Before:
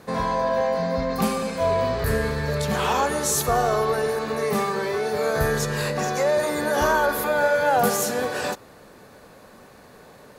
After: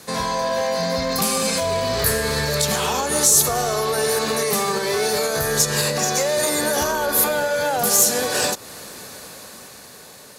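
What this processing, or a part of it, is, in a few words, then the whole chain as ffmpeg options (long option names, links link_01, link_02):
FM broadcast chain: -filter_complex "[0:a]highpass=50,lowpass=5400,dynaudnorm=framelen=300:gausssize=9:maxgain=11.5dB,acrossover=split=470|1000[link_01][link_02][link_03];[link_01]acompressor=threshold=-21dB:ratio=4[link_04];[link_02]acompressor=threshold=-21dB:ratio=4[link_05];[link_03]acompressor=threshold=-29dB:ratio=4[link_06];[link_04][link_05][link_06]amix=inputs=3:normalize=0,aemphasis=mode=production:type=75fm,alimiter=limit=-13.5dB:level=0:latency=1:release=271,asoftclip=type=hard:threshold=-16.5dB,lowpass=frequency=15000:width=0.5412,lowpass=frequency=15000:width=1.3066,aemphasis=mode=production:type=75fm,volume=1dB"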